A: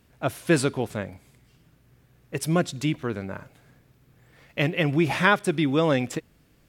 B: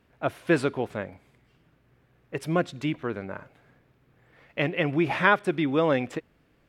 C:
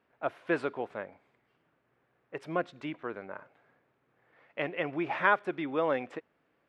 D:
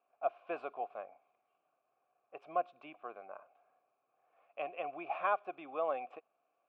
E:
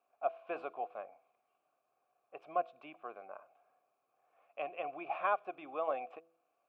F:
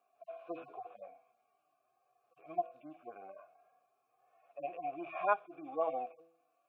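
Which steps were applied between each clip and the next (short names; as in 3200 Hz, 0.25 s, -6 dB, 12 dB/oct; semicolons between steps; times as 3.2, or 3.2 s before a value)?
tone controls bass -6 dB, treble -14 dB
band-pass 960 Hz, Q 0.58; gain -3.5 dB
vowel filter a; gain +4 dB
de-hum 165.6 Hz, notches 4
median-filter separation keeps harmonic; gain +4 dB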